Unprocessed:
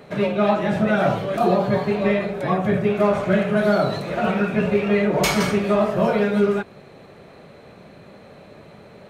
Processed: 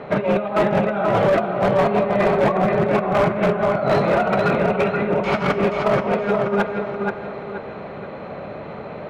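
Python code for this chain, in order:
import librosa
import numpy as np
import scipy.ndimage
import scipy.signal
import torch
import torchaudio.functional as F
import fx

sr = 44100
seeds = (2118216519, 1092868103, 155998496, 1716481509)

y = fx.over_compress(x, sr, threshold_db=-24.0, ratio=-0.5)
y = scipy.signal.sosfilt(scipy.signal.butter(2, 2700.0, 'lowpass', fs=sr, output='sos'), y)
y = fx.peak_eq(y, sr, hz=910.0, db=6.5, octaves=2.4)
y = fx.notch(y, sr, hz=1700.0, q=16.0)
y = fx.echo_feedback(y, sr, ms=478, feedback_pct=36, wet_db=-4.5)
y = fx.rev_schroeder(y, sr, rt60_s=1.8, comb_ms=30, drr_db=12.0)
y = np.clip(10.0 ** (13.5 / 20.0) * y, -1.0, 1.0) / 10.0 ** (13.5 / 20.0)
y = y * librosa.db_to_amplitude(1.5)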